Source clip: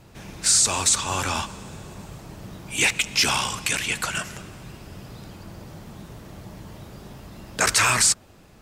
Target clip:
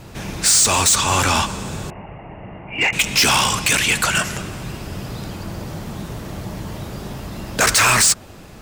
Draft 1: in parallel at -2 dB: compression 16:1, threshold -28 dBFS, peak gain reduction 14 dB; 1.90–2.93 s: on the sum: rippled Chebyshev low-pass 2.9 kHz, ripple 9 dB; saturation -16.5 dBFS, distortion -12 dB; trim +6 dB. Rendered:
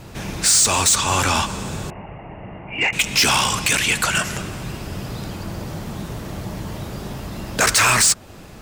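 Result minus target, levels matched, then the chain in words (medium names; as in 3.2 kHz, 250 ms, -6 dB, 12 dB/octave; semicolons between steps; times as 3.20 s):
compression: peak gain reduction +10 dB
in parallel at -2 dB: compression 16:1, threshold -17.5 dBFS, peak gain reduction 4.5 dB; 1.90–2.93 s: on the sum: rippled Chebyshev low-pass 2.9 kHz, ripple 9 dB; saturation -16.5 dBFS, distortion -9 dB; trim +6 dB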